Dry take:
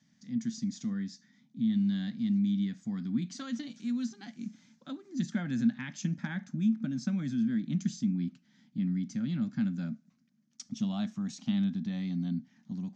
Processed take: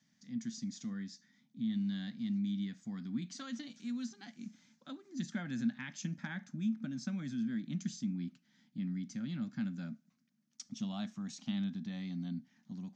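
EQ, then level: bass shelf 430 Hz -5.5 dB; -2.5 dB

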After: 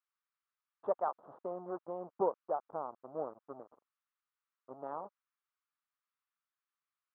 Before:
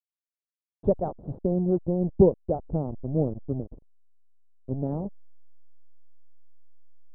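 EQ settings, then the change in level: resonant high-pass 1.2 kHz, resonance Q 3.8; distance through air 230 m; +3.5 dB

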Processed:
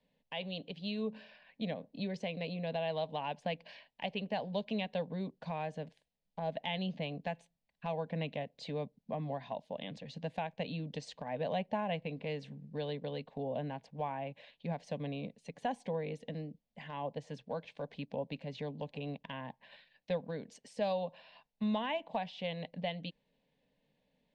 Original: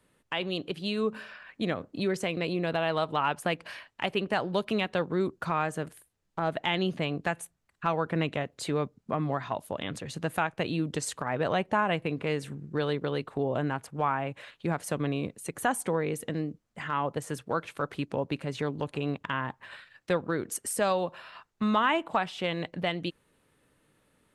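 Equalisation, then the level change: low-pass 4.8 kHz 24 dB/octave; static phaser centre 350 Hz, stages 6; -5.5 dB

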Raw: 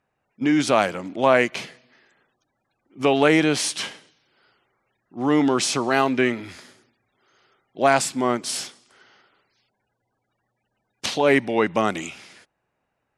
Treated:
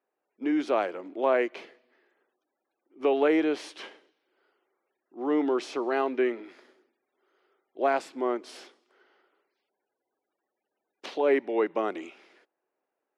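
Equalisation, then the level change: ladder high-pass 300 Hz, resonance 45%; treble shelf 4 kHz -11.5 dB; peaking EQ 8.4 kHz -8 dB 1.1 oct; 0.0 dB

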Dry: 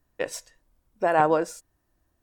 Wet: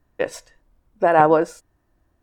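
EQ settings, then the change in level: treble shelf 3.7 kHz -11 dB; +6.5 dB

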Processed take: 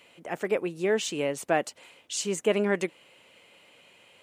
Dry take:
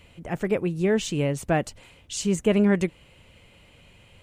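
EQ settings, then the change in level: high-pass 360 Hz 12 dB/octave; 0.0 dB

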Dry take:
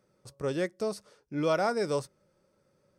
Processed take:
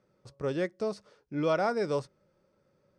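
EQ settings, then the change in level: distance through air 93 m; 0.0 dB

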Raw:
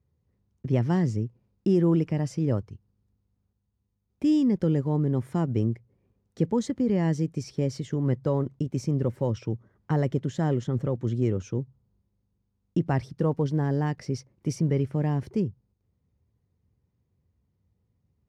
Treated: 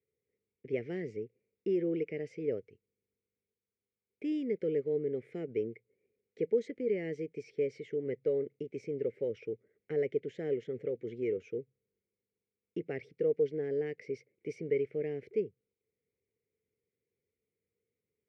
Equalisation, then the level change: two resonant band-passes 990 Hz, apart 2.3 oct; +3.5 dB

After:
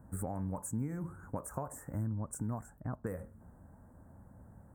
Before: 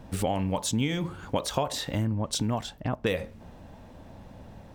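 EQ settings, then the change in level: high-pass 41 Hz; elliptic band-stop 1.5–8.2 kHz, stop band 80 dB; peaking EQ 550 Hz -7 dB 2.4 oct; -6.0 dB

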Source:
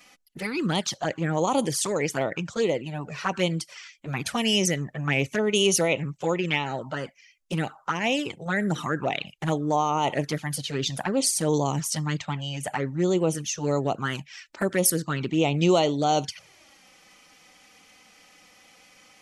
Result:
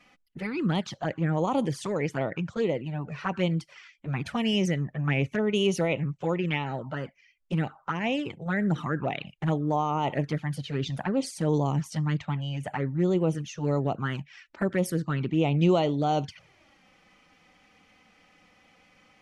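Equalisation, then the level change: tone controls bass +6 dB, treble -12 dB; treble shelf 11 kHz -6.5 dB; -3.5 dB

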